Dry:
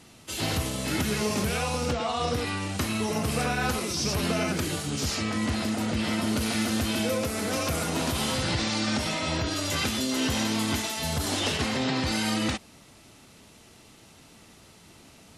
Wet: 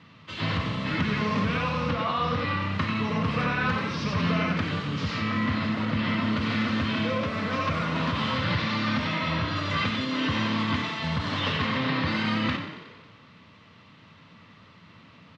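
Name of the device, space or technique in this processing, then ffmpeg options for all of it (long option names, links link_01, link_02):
frequency-shifting delay pedal into a guitar cabinet: -filter_complex "[0:a]asplit=9[link_01][link_02][link_03][link_04][link_05][link_06][link_07][link_08][link_09];[link_02]adelay=91,afreqshift=34,volume=-9dB[link_10];[link_03]adelay=182,afreqshift=68,volume=-13.2dB[link_11];[link_04]adelay=273,afreqshift=102,volume=-17.3dB[link_12];[link_05]adelay=364,afreqshift=136,volume=-21.5dB[link_13];[link_06]adelay=455,afreqshift=170,volume=-25.6dB[link_14];[link_07]adelay=546,afreqshift=204,volume=-29.8dB[link_15];[link_08]adelay=637,afreqshift=238,volume=-33.9dB[link_16];[link_09]adelay=728,afreqshift=272,volume=-38.1dB[link_17];[link_01][link_10][link_11][link_12][link_13][link_14][link_15][link_16][link_17]amix=inputs=9:normalize=0,highpass=100,equalizer=frequency=100:width_type=q:width=4:gain=7,equalizer=frequency=170:width_type=q:width=4:gain=6,equalizer=frequency=370:width_type=q:width=4:gain=-10,equalizer=frequency=760:width_type=q:width=4:gain=-9,equalizer=frequency=1100:width_type=q:width=4:gain=9,equalizer=frequency=1900:width_type=q:width=4:gain=4,lowpass=frequency=3800:width=0.5412,lowpass=frequency=3800:width=1.3066"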